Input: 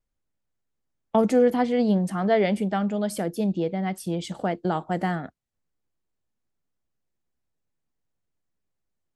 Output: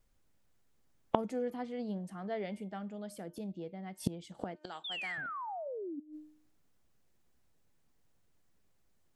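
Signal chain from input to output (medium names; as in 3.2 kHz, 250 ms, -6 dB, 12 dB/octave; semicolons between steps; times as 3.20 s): 4.56–5.18 s: frequency weighting ITU-R 468; 4.84–6.00 s: painted sound fall 270–3700 Hz -23 dBFS; de-hum 304.8 Hz, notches 11; inverted gate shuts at -25 dBFS, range -26 dB; trim +9 dB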